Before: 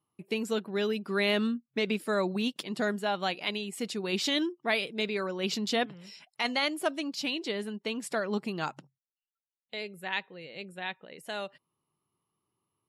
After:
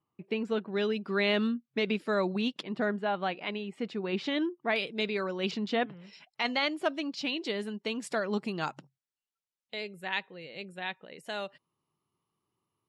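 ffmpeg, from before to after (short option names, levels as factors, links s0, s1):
-af "asetnsamples=n=441:p=0,asendcmd='0.72 lowpass f 4600;2.61 lowpass f 2300;4.76 lowpass f 5800;5.51 lowpass f 2700;6.13 lowpass f 4700;7.45 lowpass f 8500',lowpass=2700"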